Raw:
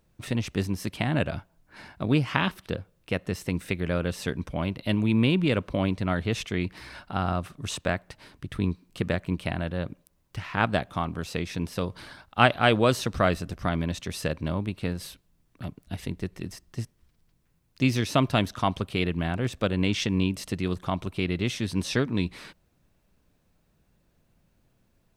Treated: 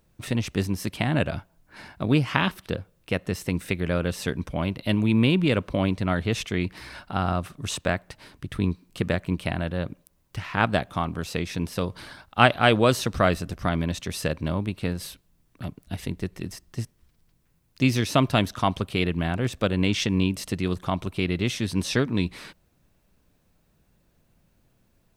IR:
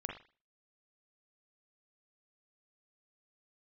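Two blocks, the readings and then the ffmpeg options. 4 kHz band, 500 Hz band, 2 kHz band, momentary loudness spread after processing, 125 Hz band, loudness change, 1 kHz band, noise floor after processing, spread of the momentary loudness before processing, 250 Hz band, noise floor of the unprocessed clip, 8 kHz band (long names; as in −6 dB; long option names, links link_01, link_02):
+2.5 dB, +2.0 dB, +2.0 dB, 14 LU, +2.0 dB, +2.0 dB, +2.0 dB, −66 dBFS, 14 LU, +2.0 dB, −68 dBFS, +3.5 dB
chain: -af "highshelf=frequency=8900:gain=3.5,volume=2dB"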